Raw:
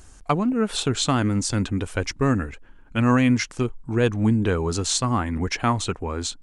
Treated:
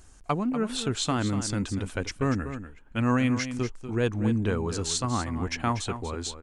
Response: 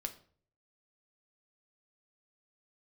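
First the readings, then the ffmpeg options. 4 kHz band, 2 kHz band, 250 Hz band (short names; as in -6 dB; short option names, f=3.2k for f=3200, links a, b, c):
-5.0 dB, -5.0 dB, -5.5 dB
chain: -af "aecho=1:1:241:0.299,volume=-5.5dB"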